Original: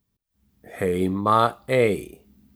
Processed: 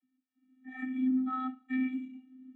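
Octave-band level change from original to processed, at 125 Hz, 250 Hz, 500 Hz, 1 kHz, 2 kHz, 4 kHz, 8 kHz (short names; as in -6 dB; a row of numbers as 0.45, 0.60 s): under -30 dB, -3.0 dB, under -40 dB, -18.0 dB, -13.0 dB, under -20 dB, under -35 dB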